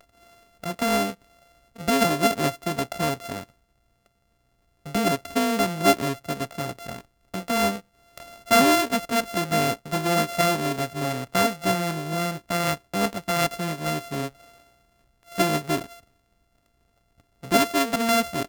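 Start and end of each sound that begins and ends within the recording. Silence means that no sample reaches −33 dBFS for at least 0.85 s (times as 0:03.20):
0:04.86–0:14.28
0:15.32–0:15.92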